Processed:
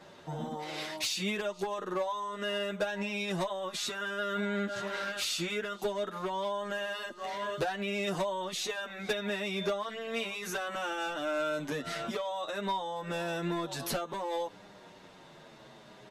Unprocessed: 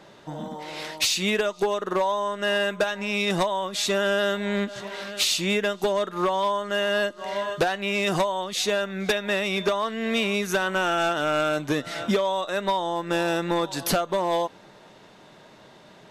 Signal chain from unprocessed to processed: 3.74–5.78 s: peaking EQ 1.4 kHz +10 dB 0.36 oct; peak limiter -23.5 dBFS, peak gain reduction 11 dB; endless flanger 8.2 ms -0.6 Hz

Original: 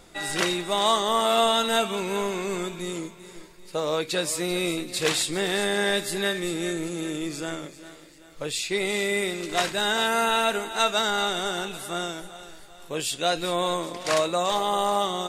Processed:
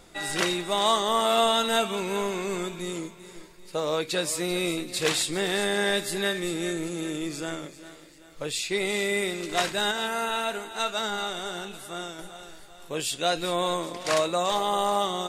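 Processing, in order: 9.91–12.19 s: flange 1 Hz, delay 7.6 ms, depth 5.2 ms, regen +82%; trim -1 dB

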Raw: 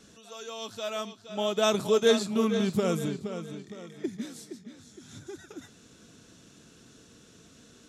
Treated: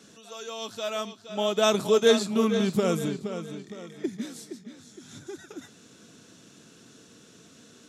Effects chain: high-pass 130 Hz 12 dB/octave; trim +2.5 dB

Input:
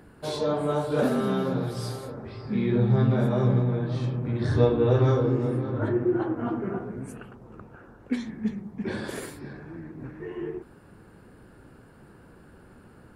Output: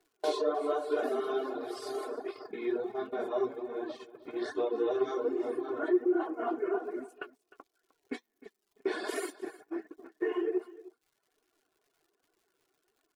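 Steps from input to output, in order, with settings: treble shelf 2.7 kHz +5.5 dB, from 3.88 s +10 dB; compression 3:1, threshold -34 dBFS, peak gain reduction 15 dB; high-pass 410 Hz 24 dB/octave; tilt EQ -3.5 dB/octave; comb 2.8 ms, depth 90%; gate -39 dBFS, range -29 dB; crackle 270 per s -62 dBFS; flange 1.3 Hz, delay 2.5 ms, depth 5.4 ms, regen +63%; reverb removal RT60 0.79 s; delay 306 ms -18.5 dB; trim +7.5 dB

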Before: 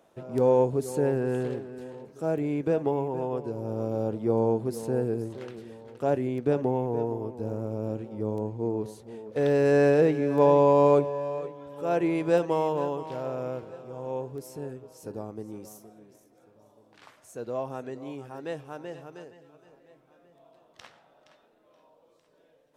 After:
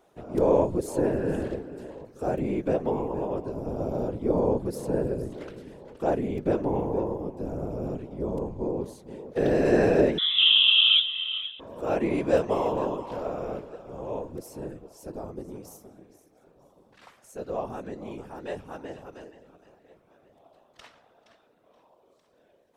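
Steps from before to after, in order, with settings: 10.18–11.60 s: frequency inversion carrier 3.7 kHz; whisper effect

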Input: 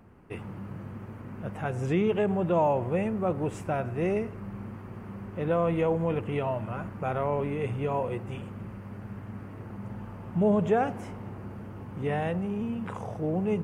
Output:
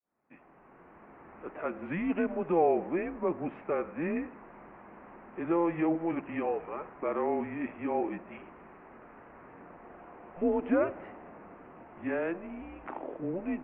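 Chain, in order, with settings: fade-in on the opening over 1.35 s; mistuned SSB -170 Hz 430–2700 Hz

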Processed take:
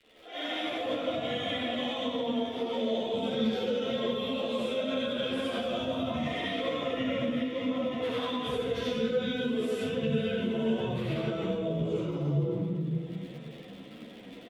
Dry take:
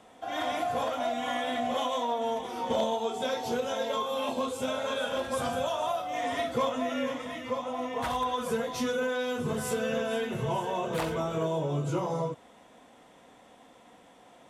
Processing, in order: high-pass 110 Hz 12 dB/octave; bass shelf 400 Hz +7 dB; three bands offset in time highs, mids, lows 30/440 ms, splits 340/1700 Hz; algorithmic reverb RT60 1.8 s, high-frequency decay 0.75×, pre-delay 30 ms, DRR -7.5 dB; peak limiter -14.5 dBFS, peak gain reduction 7 dB; crackle 100 per s -35 dBFS; level rider gain up to 4.5 dB; FFT filter 460 Hz 0 dB, 850 Hz -15 dB, 2.1 kHz 0 dB, 3.4 kHz +1 dB, 6.2 kHz -14 dB; compression 2.5:1, threshold -27 dBFS, peak gain reduction 8.5 dB; three-phase chorus

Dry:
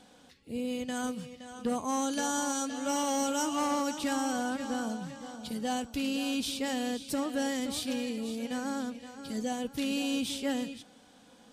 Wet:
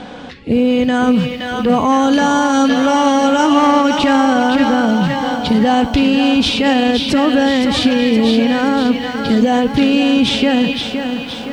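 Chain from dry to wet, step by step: low-pass 2.9 kHz 12 dB/octave; loudness maximiser +31.5 dB; bit-crushed delay 518 ms, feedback 55%, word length 7-bit, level -7 dB; trim -4.5 dB

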